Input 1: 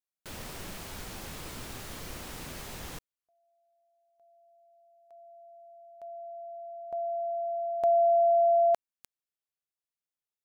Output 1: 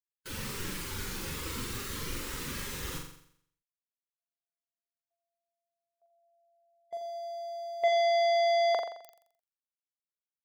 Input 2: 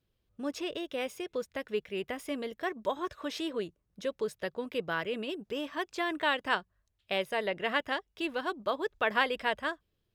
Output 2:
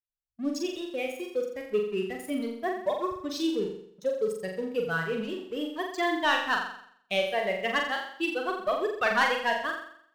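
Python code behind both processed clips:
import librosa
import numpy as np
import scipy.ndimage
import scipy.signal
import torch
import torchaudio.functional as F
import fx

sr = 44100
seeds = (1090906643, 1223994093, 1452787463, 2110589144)

y = fx.bin_expand(x, sr, power=2.0)
y = fx.leveller(y, sr, passes=2)
y = fx.room_flutter(y, sr, wall_m=7.4, rt60_s=0.65)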